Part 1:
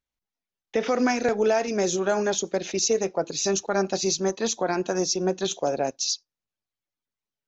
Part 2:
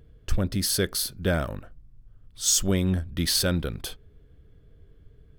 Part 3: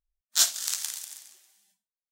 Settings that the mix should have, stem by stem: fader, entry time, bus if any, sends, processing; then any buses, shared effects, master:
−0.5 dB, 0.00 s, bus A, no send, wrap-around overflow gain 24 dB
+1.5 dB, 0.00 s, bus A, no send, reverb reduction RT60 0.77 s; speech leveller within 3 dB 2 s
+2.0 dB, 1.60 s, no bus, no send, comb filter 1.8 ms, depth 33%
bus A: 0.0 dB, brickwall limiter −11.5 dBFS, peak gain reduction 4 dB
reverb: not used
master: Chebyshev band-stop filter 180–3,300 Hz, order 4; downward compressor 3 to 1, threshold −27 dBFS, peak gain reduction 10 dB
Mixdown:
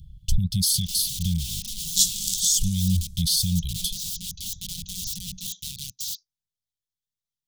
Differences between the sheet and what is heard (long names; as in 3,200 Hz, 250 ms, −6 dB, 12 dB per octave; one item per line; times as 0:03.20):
stem 2 +1.5 dB → +7.5 dB
master: missing downward compressor 3 to 1, threshold −27 dBFS, peak gain reduction 10 dB